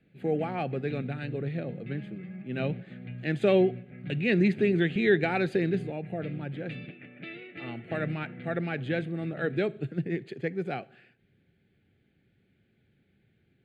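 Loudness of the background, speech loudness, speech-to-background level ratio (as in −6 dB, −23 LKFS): −43.0 LKFS, −30.0 LKFS, 13.0 dB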